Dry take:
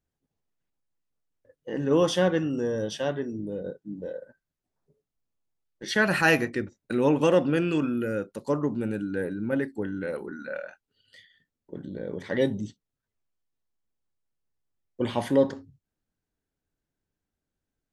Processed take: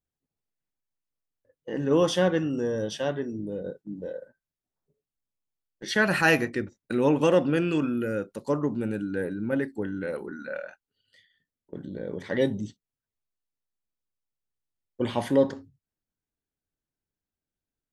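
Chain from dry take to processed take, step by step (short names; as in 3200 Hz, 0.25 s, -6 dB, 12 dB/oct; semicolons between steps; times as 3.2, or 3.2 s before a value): gate -45 dBFS, range -7 dB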